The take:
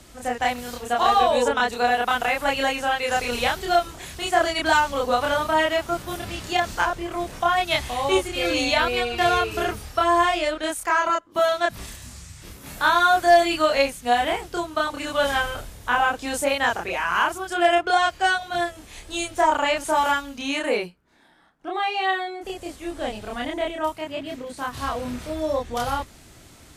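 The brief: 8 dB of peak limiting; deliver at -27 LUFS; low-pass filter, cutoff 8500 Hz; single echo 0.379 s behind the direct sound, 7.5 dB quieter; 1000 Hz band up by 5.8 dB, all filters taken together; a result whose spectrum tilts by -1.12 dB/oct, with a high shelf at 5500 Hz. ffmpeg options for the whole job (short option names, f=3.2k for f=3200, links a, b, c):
-af "lowpass=8.5k,equalizer=f=1k:t=o:g=8,highshelf=f=5.5k:g=-3,alimiter=limit=-9.5dB:level=0:latency=1,aecho=1:1:379:0.422,volume=-6.5dB"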